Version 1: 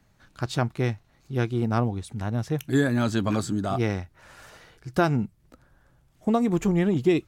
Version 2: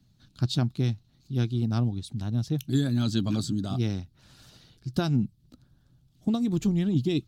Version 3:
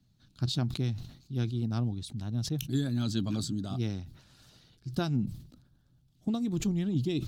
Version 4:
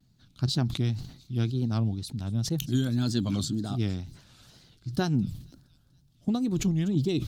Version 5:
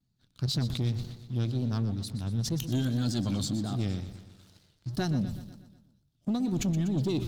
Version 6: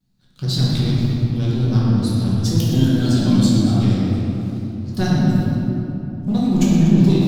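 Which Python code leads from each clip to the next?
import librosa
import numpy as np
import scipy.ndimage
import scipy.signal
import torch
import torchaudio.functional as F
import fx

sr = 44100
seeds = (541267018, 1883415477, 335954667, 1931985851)

y1 = fx.hpss(x, sr, part='percussive', gain_db=6)
y1 = fx.graphic_eq(y1, sr, hz=(125, 250, 500, 1000, 2000, 4000, 8000), db=(8, 5, -8, -7, -11, 10, -3))
y1 = F.gain(torch.from_numpy(y1), -7.5).numpy()
y2 = fx.sustainer(y1, sr, db_per_s=93.0)
y2 = F.gain(torch.from_numpy(y2), -5.0).numpy()
y3 = fx.echo_wet_highpass(y2, sr, ms=233, feedback_pct=57, hz=4300.0, wet_db=-18)
y3 = fx.wow_flutter(y3, sr, seeds[0], rate_hz=2.1, depth_cents=120.0)
y3 = F.gain(torch.from_numpy(y3), 3.5).numpy()
y4 = fx.leveller(y3, sr, passes=2)
y4 = fx.echo_feedback(y4, sr, ms=122, feedback_pct=55, wet_db=-13)
y4 = F.gain(torch.from_numpy(y4), -8.0).numpy()
y5 = fx.room_shoebox(y4, sr, seeds[1], volume_m3=150.0, walls='hard', distance_m=1.0)
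y5 = F.gain(torch.from_numpy(y5), 4.0).numpy()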